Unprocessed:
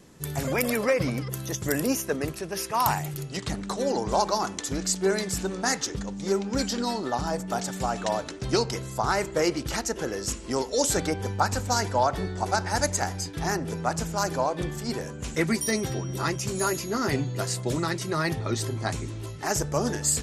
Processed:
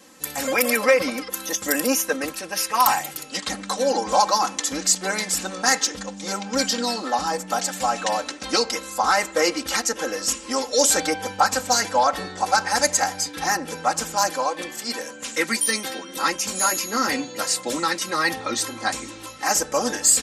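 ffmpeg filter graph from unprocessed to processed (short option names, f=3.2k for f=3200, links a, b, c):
-filter_complex "[0:a]asettb=1/sr,asplit=3[a][b][c];[a]atrim=end=14.304[d];[b]atrim=start=14.3:end=16.17,asetpts=PTS-STARTPTS,afade=t=in:d=0.004:c=qsin,afade=t=out:st=1.866:d=0.004:c=qsin,highpass=f=260:p=1,equalizer=f=760:w=1.4:g=-3.5[e];[c]atrim=start=16.166[f];[d][e]acrossfade=d=0.004:c1=hsin:c2=qsin[g];[g][f]acrossfade=d=0.004:c1=qsin:c2=hsin,highpass=f=710:p=1,aecho=1:1:3.8:0.98,acontrast=68,volume=-1dB"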